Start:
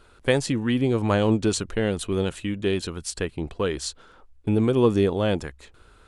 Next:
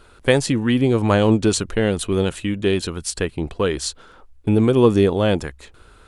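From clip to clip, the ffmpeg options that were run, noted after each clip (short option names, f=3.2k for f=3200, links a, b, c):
-af "equalizer=f=9.9k:t=o:w=0.26:g=2.5,volume=5dB"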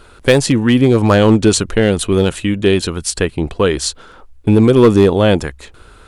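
-af "volume=9dB,asoftclip=hard,volume=-9dB,volume=6.5dB"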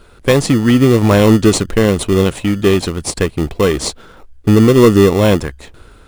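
-filter_complex "[0:a]dynaudnorm=f=100:g=7:m=11.5dB,asplit=2[a][b];[b]acrusher=samples=28:mix=1:aa=0.000001,volume=-5.5dB[c];[a][c]amix=inputs=2:normalize=0,volume=-4dB"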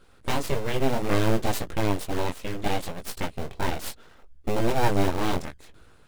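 -af "flanger=delay=16.5:depth=6.4:speed=0.66,aeval=exprs='abs(val(0))':c=same,volume=-8.5dB"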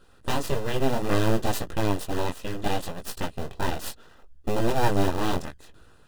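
-af "asuperstop=centerf=2200:order=4:qfactor=7.7"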